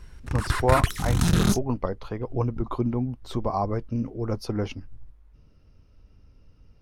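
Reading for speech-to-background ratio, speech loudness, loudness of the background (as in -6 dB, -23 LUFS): -3.5 dB, -29.0 LUFS, -25.5 LUFS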